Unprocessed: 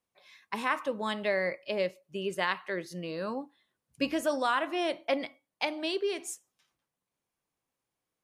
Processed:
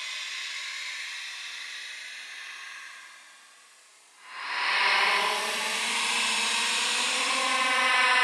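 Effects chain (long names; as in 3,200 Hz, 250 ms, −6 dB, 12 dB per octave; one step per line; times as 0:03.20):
compressor on every frequency bin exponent 0.6
meter weighting curve ITU-R 468
extreme stretch with random phases 23×, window 0.05 s, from 0:00.32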